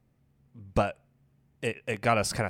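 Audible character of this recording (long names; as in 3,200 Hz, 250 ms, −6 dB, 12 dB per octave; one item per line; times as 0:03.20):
background noise floor −69 dBFS
spectral slope −4.5 dB per octave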